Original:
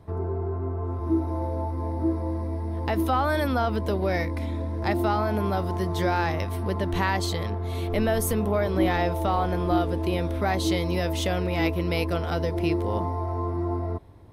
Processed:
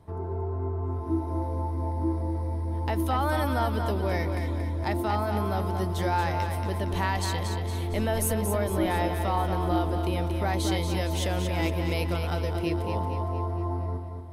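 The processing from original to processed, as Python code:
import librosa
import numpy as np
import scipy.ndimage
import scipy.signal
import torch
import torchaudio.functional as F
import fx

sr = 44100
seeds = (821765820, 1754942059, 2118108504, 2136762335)

p1 = fx.peak_eq(x, sr, hz=9600.0, db=6.0, octaves=1.1)
p2 = fx.small_body(p1, sr, hz=(900.0, 3100.0), ring_ms=45, db=7)
p3 = p2 + fx.echo_feedback(p2, sr, ms=230, feedback_pct=49, wet_db=-6.5, dry=0)
y = F.gain(torch.from_numpy(p3), -4.5).numpy()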